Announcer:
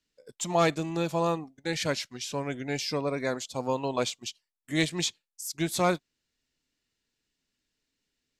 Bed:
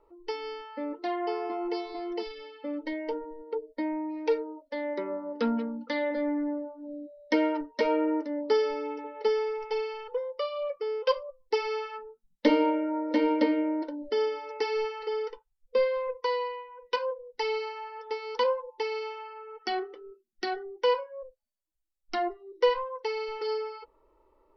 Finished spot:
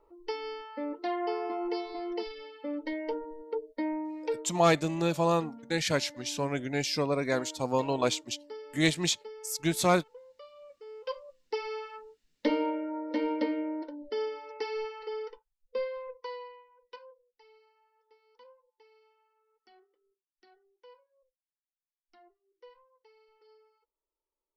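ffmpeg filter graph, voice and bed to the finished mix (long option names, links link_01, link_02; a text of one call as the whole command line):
ffmpeg -i stem1.wav -i stem2.wav -filter_complex "[0:a]adelay=4050,volume=1dB[link_01];[1:a]volume=12.5dB,afade=type=out:start_time=3.91:duration=0.8:silence=0.125893,afade=type=in:start_time=10.72:duration=0.92:silence=0.211349,afade=type=out:start_time=15.21:duration=2.1:silence=0.0562341[link_02];[link_01][link_02]amix=inputs=2:normalize=0" out.wav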